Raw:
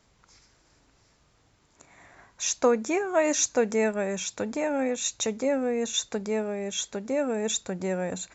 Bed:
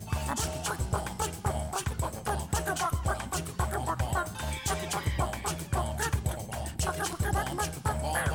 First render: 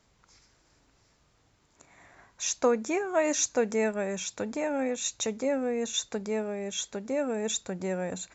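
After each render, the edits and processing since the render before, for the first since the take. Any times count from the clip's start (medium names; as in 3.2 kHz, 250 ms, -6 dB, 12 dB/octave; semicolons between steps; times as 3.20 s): trim -2.5 dB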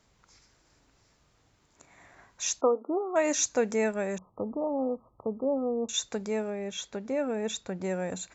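2.61–3.16 s: brick-wall FIR band-pass 240–1400 Hz; 4.18–5.89 s: brick-wall FIR low-pass 1.3 kHz; 6.50–7.84 s: distance through air 92 m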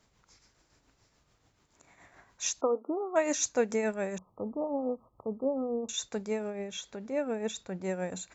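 tremolo triangle 7 Hz, depth 55%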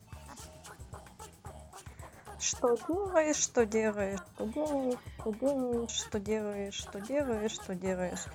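add bed -17 dB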